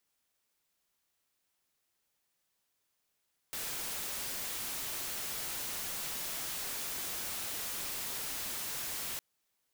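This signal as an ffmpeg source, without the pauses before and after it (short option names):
-f lavfi -i "anoisesrc=c=white:a=0.0206:d=5.66:r=44100:seed=1"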